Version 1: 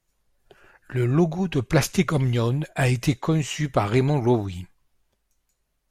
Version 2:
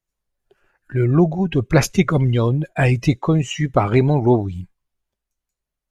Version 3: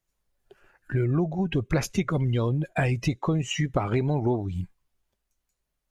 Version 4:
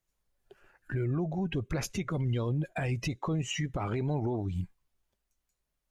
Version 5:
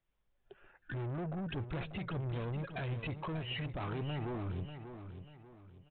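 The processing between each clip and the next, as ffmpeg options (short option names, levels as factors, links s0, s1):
-af "afftdn=nr=15:nf=-32,volume=1.78"
-af "acompressor=threshold=0.0447:ratio=4,volume=1.41"
-af "alimiter=limit=0.0841:level=0:latency=1:release=55,volume=0.75"
-af "aresample=8000,asoftclip=type=tanh:threshold=0.0158,aresample=44100,aecho=1:1:590|1180|1770|2360:0.335|0.121|0.0434|0.0156"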